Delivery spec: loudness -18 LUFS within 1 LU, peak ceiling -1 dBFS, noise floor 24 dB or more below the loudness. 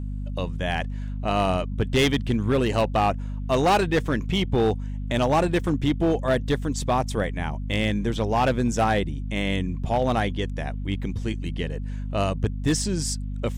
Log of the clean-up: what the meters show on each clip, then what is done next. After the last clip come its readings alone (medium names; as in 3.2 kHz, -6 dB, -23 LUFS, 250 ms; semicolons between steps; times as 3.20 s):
clipped samples 1.8%; clipping level -15.0 dBFS; hum 50 Hz; highest harmonic 250 Hz; hum level -28 dBFS; loudness -25.0 LUFS; peak level -15.0 dBFS; loudness target -18.0 LUFS
-> clip repair -15 dBFS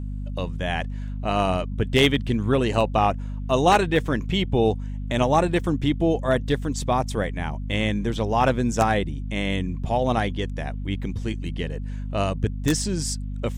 clipped samples 0.0%; hum 50 Hz; highest harmonic 250 Hz; hum level -28 dBFS
-> de-hum 50 Hz, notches 5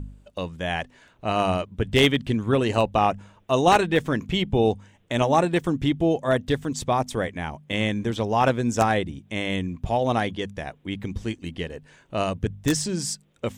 hum not found; loudness -24.5 LUFS; peak level -5.0 dBFS; loudness target -18.0 LUFS
-> trim +6.5 dB; peak limiter -1 dBFS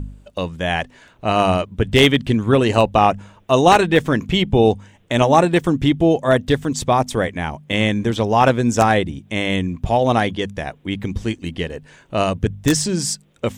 loudness -18.0 LUFS; peak level -1.0 dBFS; noise floor -51 dBFS